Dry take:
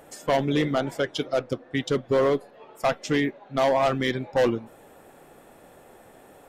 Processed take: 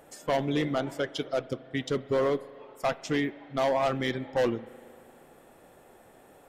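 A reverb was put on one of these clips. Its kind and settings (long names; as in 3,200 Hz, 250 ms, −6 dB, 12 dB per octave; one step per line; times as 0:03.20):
spring reverb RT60 2.4 s, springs 38 ms, chirp 35 ms, DRR 17.5 dB
level −4.5 dB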